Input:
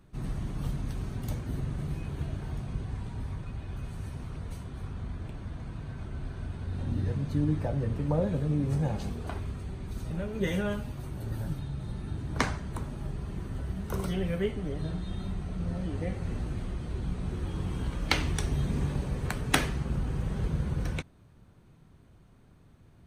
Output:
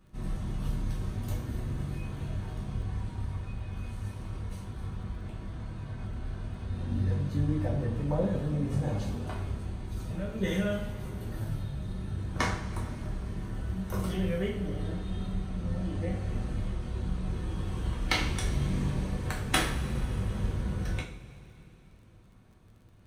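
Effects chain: two-slope reverb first 0.42 s, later 3.5 s, from -19 dB, DRR -2.5 dB; crackle 27 per s -49 dBFS; trim -4.5 dB

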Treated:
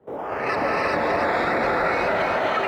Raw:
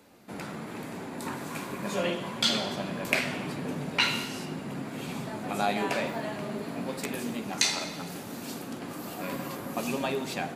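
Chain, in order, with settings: high-order bell 2.9 kHz -9 dB 2.5 oct; wide varispeed 3.94×; band-stop 2.9 kHz; decimation with a swept rate 8×, swing 160% 0.23 Hz; LFO low-pass saw up 1.8 Hz 580–3600 Hz; short-mantissa float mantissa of 6-bit; bass shelf 350 Hz -11 dB; two-band feedback delay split 1.6 kHz, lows 204 ms, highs 300 ms, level -4.5 dB; frequency shift -310 Hz; high-pass 58 Hz; gated-style reverb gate 430 ms rising, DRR -5 dB; peak limiter -19.5 dBFS, peak gain reduction 6.5 dB; trim +6 dB

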